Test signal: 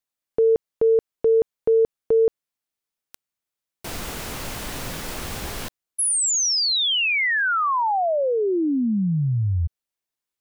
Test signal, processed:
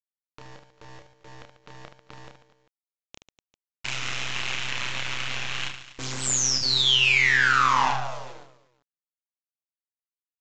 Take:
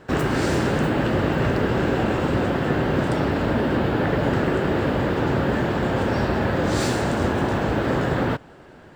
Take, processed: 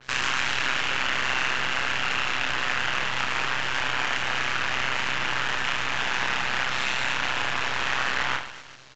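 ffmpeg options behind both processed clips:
ffmpeg -i in.wav -filter_complex "[0:a]highpass=frequency=960:width=0.5412,highpass=frequency=960:width=1.3066,equalizer=frequency=2700:width_type=o:width=1.1:gain=13,bandreject=frequency=4800:width=6,acompressor=threshold=-20dB:ratio=6:attack=0.21:release=26:knee=1,tremolo=f=130:d=0.824,acrusher=bits=5:dc=4:mix=0:aa=0.000001,asplit=2[link_01][link_02];[link_02]aecho=0:1:30|75|142.5|243.8|395.6:0.631|0.398|0.251|0.158|0.1[link_03];[link_01][link_03]amix=inputs=2:normalize=0,aresample=16000,aresample=44100,adynamicequalizer=threshold=0.0112:dfrequency=4200:dqfactor=0.7:tfrequency=4200:tqfactor=0.7:attack=5:release=100:ratio=0.375:range=4:mode=cutabove:tftype=highshelf,volume=3dB" out.wav

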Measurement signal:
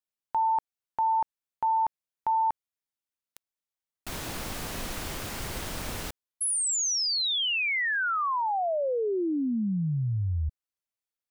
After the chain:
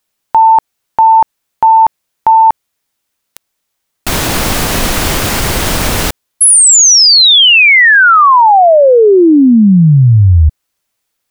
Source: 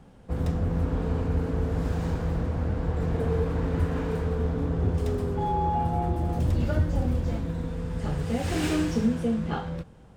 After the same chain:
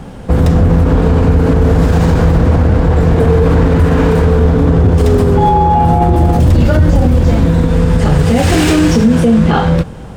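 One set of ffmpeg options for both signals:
ffmpeg -i in.wav -af "acontrast=52,alimiter=level_in=17.5dB:limit=-1dB:release=50:level=0:latency=1,volume=-1dB" out.wav

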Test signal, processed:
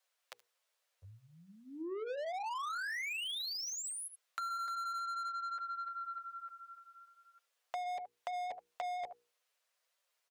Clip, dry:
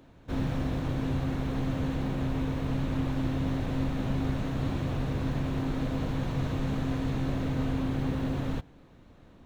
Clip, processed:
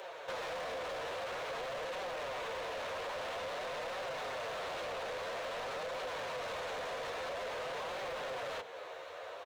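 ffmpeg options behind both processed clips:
ffmpeg -i in.wav -filter_complex "[0:a]lowshelf=frequency=330:width_type=q:width=3:gain=-14,acrossover=split=360|3100[link_01][link_02][link_03];[link_01]alimiter=level_in=18dB:limit=-24dB:level=0:latency=1,volume=-18dB[link_04];[link_02]bandreject=frequency=830:width=17[link_05];[link_04][link_05][link_03]amix=inputs=3:normalize=0,flanger=delay=5:depth=8.3:regen=-1:speed=0.5:shape=triangular,highpass=60,equalizer=frequency=250:width_type=o:width=1:gain=-12,asplit=2[link_06][link_07];[link_07]aecho=0:1:75:0.0631[link_08];[link_06][link_08]amix=inputs=2:normalize=0,asoftclip=type=tanh:threshold=-27dB,acrossover=split=4800[link_09][link_10];[link_10]acompressor=threshold=-57dB:ratio=4:attack=1:release=60[link_11];[link_09][link_11]amix=inputs=2:normalize=0,asplit=2[link_12][link_13];[link_13]highpass=frequency=720:poles=1,volume=24dB,asoftclip=type=tanh:threshold=-27.5dB[link_14];[link_12][link_14]amix=inputs=2:normalize=0,lowpass=frequency=5200:poles=1,volume=-6dB,bandreject=frequency=60:width_type=h:width=6,bandreject=frequency=120:width_type=h:width=6,bandreject=frequency=180:width_type=h:width=6,bandreject=frequency=240:width_type=h:width=6,bandreject=frequency=300:width_type=h:width=6,bandreject=frequency=360:width_type=h:width=6,bandreject=frequency=420:width_type=h:width=6,bandreject=frequency=480:width_type=h:width=6,acompressor=threshold=-41dB:ratio=6,volume=2dB" out.wav

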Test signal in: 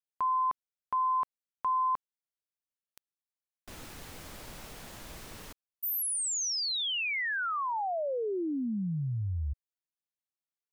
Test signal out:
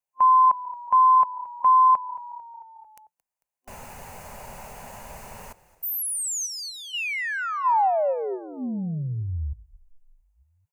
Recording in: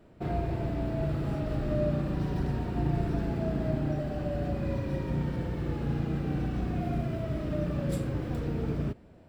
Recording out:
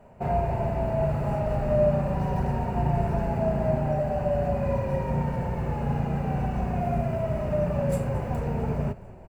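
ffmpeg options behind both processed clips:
ffmpeg -i in.wav -filter_complex "[0:a]superequalizer=6b=0.251:8b=2:9b=2.82:13b=0.282:14b=0.501,asplit=6[link_01][link_02][link_03][link_04][link_05][link_06];[link_02]adelay=223,afreqshift=-33,volume=-19dB[link_07];[link_03]adelay=446,afreqshift=-66,volume=-23.4dB[link_08];[link_04]adelay=669,afreqshift=-99,volume=-27.9dB[link_09];[link_05]adelay=892,afreqshift=-132,volume=-32.3dB[link_10];[link_06]adelay=1115,afreqshift=-165,volume=-36.7dB[link_11];[link_01][link_07][link_08][link_09][link_10][link_11]amix=inputs=6:normalize=0,volume=3.5dB" out.wav

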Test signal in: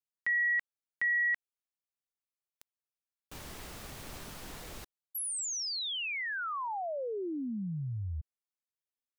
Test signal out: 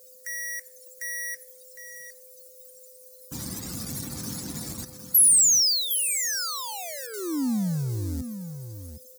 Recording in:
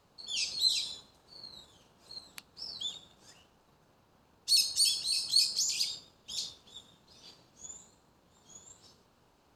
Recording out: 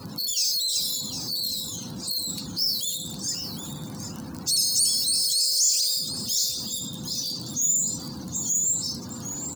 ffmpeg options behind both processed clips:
ffmpeg -i in.wav -filter_complex "[0:a]aeval=exprs='val(0)+0.5*0.0299*sgn(val(0))':channel_layout=same,highpass=100,afftdn=noise_reduction=30:noise_floor=-38,equalizer=frequency=490:width_type=o:width=0.61:gain=-5,asplit=2[link_01][link_02];[link_02]aeval=exprs='val(0)*gte(abs(val(0)),0.0237)':channel_layout=same,volume=-3.5dB[link_03];[link_01][link_03]amix=inputs=2:normalize=0,acompressor=threshold=-31dB:ratio=5:attack=0.7:release=23,aexciter=amount=3.9:drive=9.9:freq=4400,lowshelf=frequency=360:width_type=q:width=1.5:gain=9.5,aeval=exprs='val(0)+0.00316*sin(2*PI*510*n/s)':channel_layout=same,asplit=2[link_04][link_05];[link_05]aecho=0:1:759:0.316[link_06];[link_04][link_06]amix=inputs=2:normalize=0,volume=-4.5dB" out.wav

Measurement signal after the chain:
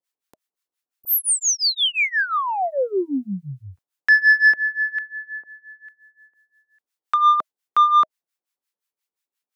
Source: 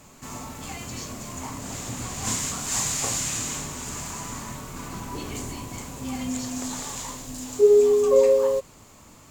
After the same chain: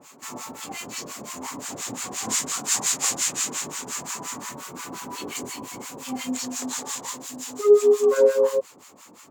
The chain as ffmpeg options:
ffmpeg -i in.wav -filter_complex "[0:a]highpass=280,bandreject=frequency=630:width=13,asoftclip=type=tanh:threshold=-11.5dB,acrossover=split=930[link_01][link_02];[link_01]aeval=exprs='val(0)*(1-1/2+1/2*cos(2*PI*5.7*n/s))':channel_layout=same[link_03];[link_02]aeval=exprs='val(0)*(1-1/2-1/2*cos(2*PI*5.7*n/s))':channel_layout=same[link_04];[link_03][link_04]amix=inputs=2:normalize=0,volume=7dB" out.wav

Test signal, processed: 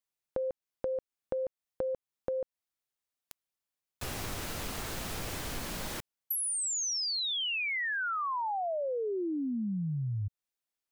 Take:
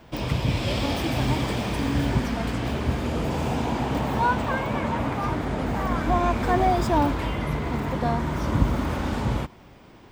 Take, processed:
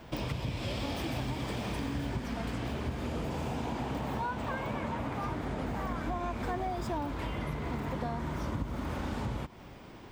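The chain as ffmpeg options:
ffmpeg -i in.wav -af "acompressor=threshold=-32dB:ratio=6" out.wav

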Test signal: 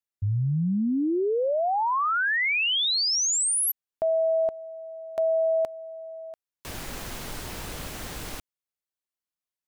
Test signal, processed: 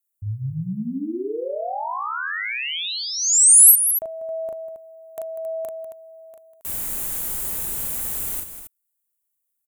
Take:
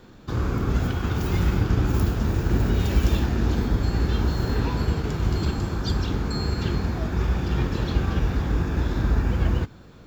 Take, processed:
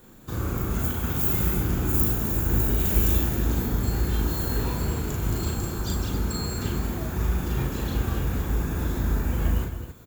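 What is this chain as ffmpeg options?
ffmpeg -i in.wav -af "aecho=1:1:37.9|195.3|271.1:0.708|0.251|0.316,aexciter=amount=10.6:drive=1.9:freq=7300,volume=-5dB" out.wav

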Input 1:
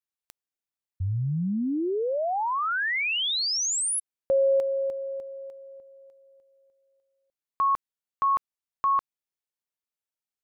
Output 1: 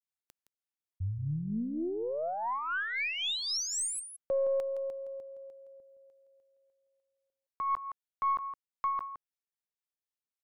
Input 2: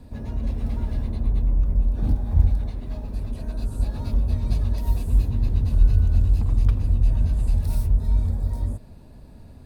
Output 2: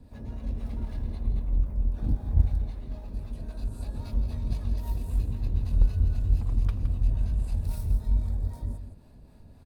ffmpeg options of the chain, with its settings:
ffmpeg -i in.wav -filter_complex "[0:a]acrossover=split=540[link_01][link_02];[link_01]aeval=exprs='val(0)*(1-0.5/2+0.5/2*cos(2*PI*3.8*n/s))':channel_layout=same[link_03];[link_02]aeval=exprs='val(0)*(1-0.5/2-0.5/2*cos(2*PI*3.8*n/s))':channel_layout=same[link_04];[link_03][link_04]amix=inputs=2:normalize=0,aecho=1:1:166:0.316,aeval=exprs='0.473*(cos(1*acos(clip(val(0)/0.473,-1,1)))-cos(1*PI/2))+0.0335*(cos(3*acos(clip(val(0)/0.473,-1,1)))-cos(3*PI/2))+0.0188*(cos(4*acos(clip(val(0)/0.473,-1,1)))-cos(4*PI/2))+0.00596*(cos(6*acos(clip(val(0)/0.473,-1,1)))-cos(6*PI/2))+0.00596*(cos(8*acos(clip(val(0)/0.473,-1,1)))-cos(8*PI/2))':channel_layout=same,volume=-3dB" out.wav

